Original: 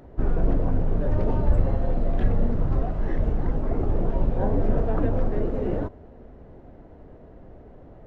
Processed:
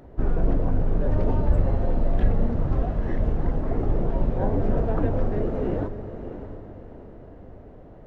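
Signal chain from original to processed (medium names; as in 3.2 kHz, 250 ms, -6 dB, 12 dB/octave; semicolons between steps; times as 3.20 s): echo that smears into a reverb 630 ms, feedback 40%, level -10 dB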